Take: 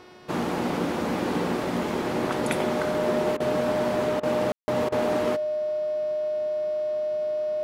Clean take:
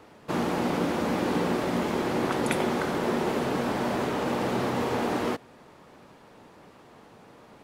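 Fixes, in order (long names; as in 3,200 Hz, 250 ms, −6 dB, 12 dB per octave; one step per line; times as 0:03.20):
hum removal 363.4 Hz, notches 16
notch filter 610 Hz, Q 30
ambience match 0:04.52–0:04.68
repair the gap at 0:03.37/0:04.20/0:04.89, 30 ms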